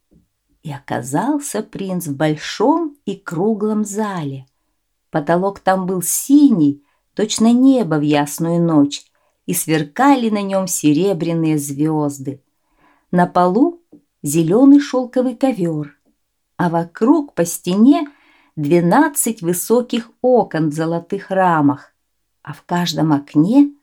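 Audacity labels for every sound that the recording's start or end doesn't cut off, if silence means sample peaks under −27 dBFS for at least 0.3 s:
0.660000	4.380000	sound
5.150000	6.730000	sound
7.170000	9.010000	sound
9.480000	12.340000	sound
13.130000	13.710000	sound
14.240000	15.870000	sound
16.590000	18.070000	sound
18.580000	21.760000	sound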